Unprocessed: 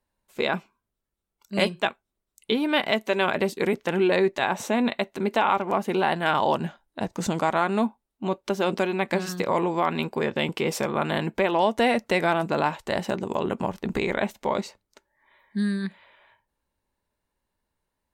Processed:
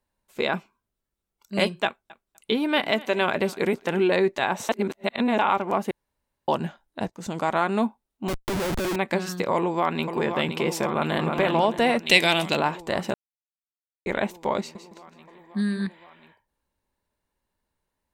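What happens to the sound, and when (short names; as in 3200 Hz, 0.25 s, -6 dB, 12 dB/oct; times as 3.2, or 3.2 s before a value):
1.85–4.06 feedback echo 0.249 s, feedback 18%, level -20.5 dB
4.69–5.39 reverse
5.91–6.48 room tone
7.1–7.54 fade in, from -16.5 dB
8.28–8.96 Schmitt trigger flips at -34 dBFS
9.55–10.14 echo throw 0.52 s, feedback 80%, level -7.5 dB
10.87–11.34 echo throw 0.31 s, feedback 30%, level -4 dB
12.06–12.57 resonant high shelf 2000 Hz +12.5 dB, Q 1.5
13.14–14.06 mute
14.59–15.87 feedback echo 0.161 s, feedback 36%, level -10 dB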